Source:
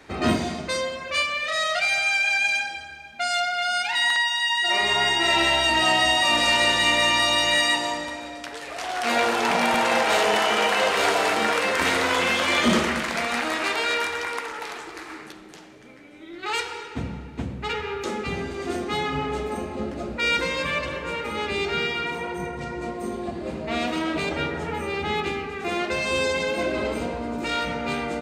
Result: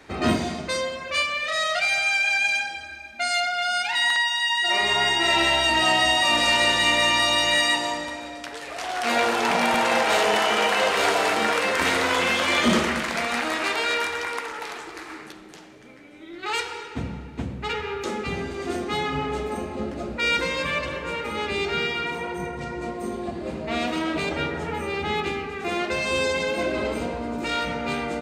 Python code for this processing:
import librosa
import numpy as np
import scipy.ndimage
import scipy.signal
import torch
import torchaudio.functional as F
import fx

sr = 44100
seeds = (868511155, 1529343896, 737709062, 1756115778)

y = fx.comb(x, sr, ms=3.3, depth=0.65, at=(2.83, 3.47))